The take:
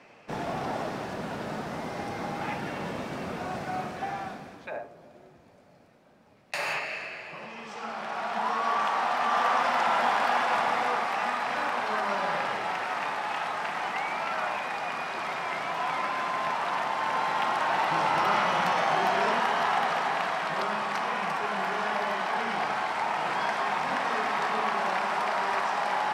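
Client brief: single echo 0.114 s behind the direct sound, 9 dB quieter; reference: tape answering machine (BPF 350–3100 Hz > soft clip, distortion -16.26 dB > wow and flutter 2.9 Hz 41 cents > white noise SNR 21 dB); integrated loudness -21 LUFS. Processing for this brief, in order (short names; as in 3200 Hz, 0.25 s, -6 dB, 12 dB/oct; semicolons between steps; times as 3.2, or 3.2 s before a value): BPF 350–3100 Hz; echo 0.114 s -9 dB; soft clip -21.5 dBFS; wow and flutter 2.9 Hz 41 cents; white noise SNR 21 dB; gain +9 dB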